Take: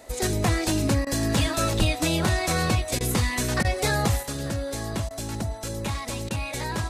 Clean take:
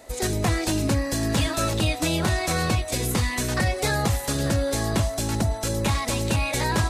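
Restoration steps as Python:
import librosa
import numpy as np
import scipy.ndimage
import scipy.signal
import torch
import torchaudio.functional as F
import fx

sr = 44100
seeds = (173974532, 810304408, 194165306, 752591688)

y = fx.fix_deplosive(x, sr, at_s=(1.78,))
y = fx.fix_interpolate(y, sr, at_s=(1.05, 2.99, 3.63, 5.09, 6.29), length_ms=15.0)
y = fx.fix_level(y, sr, at_s=4.23, step_db=6.0)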